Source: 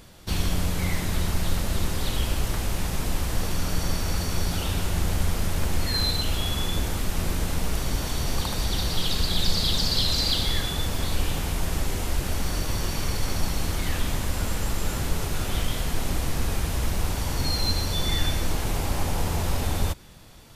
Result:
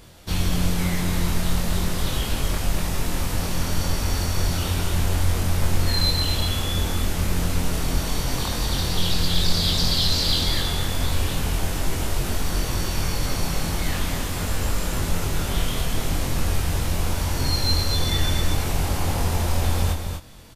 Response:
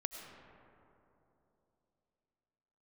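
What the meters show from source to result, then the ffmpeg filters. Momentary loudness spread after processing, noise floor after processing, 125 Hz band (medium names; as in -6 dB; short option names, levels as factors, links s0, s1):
6 LU, -27 dBFS, +4.0 dB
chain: -filter_complex "[0:a]asplit=2[s0][s1];[s1]adelay=23,volume=0.708[s2];[s0][s2]amix=inputs=2:normalize=0,asplit=2[s3][s4];[s4]aecho=0:1:243:0.501[s5];[s3][s5]amix=inputs=2:normalize=0"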